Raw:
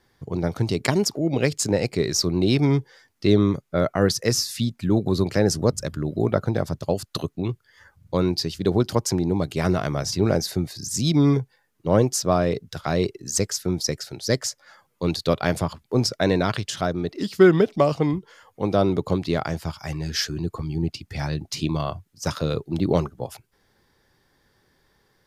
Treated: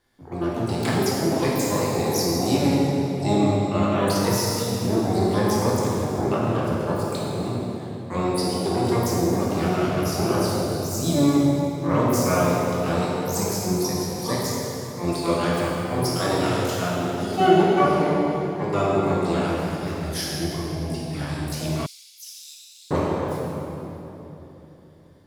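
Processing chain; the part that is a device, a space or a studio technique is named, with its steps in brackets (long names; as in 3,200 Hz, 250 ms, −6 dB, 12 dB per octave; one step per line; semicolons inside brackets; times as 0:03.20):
shimmer-style reverb (pitch-shifted copies added +12 semitones −4 dB; convolution reverb RT60 3.5 s, pre-delay 10 ms, DRR −6 dB)
0:21.86–0:22.91: inverse Chebyshev high-pass filter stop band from 880 Hz, stop band 70 dB
level −8.5 dB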